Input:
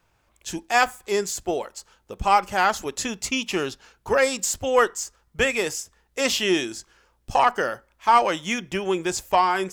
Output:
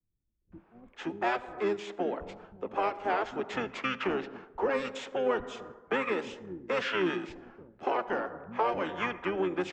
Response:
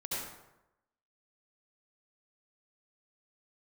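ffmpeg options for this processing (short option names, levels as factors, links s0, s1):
-filter_complex "[0:a]lowpass=f=7400:w=0.5412,lowpass=f=7400:w=1.3066,highshelf=f=2600:g=-9,acrossover=split=200[s0][s1];[s1]adelay=520[s2];[s0][s2]amix=inputs=2:normalize=0,asplit=2[s3][s4];[1:a]atrim=start_sample=2205,highshelf=f=2600:g=-5.5[s5];[s4][s5]afir=irnorm=-1:irlink=0,volume=0.106[s6];[s3][s6]amix=inputs=2:normalize=0,acrossover=split=300|3000[s7][s8][s9];[s8]acompressor=threshold=0.0251:ratio=8[s10];[s7][s10][s9]amix=inputs=3:normalize=0,asoftclip=type=tanh:threshold=0.0944,asplit=3[s11][s12][s13];[s12]asetrate=22050,aresample=44100,atempo=2,volume=0.794[s14];[s13]asetrate=35002,aresample=44100,atempo=1.25992,volume=0.398[s15];[s11][s14][s15]amix=inputs=3:normalize=0,acrossover=split=300 2700:gain=0.1 1 0.0794[s16][s17][s18];[s16][s17][s18]amix=inputs=3:normalize=0,volume=1.33"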